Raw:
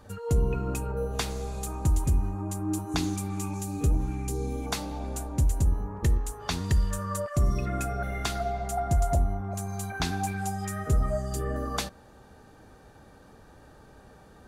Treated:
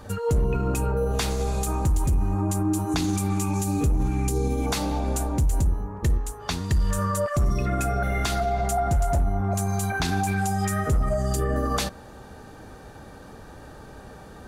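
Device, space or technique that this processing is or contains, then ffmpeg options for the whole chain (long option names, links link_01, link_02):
clipper into limiter: -af "asoftclip=type=hard:threshold=-18.5dB,alimiter=level_in=1.5dB:limit=-24dB:level=0:latency=1:release=38,volume=-1.5dB,volume=9dB"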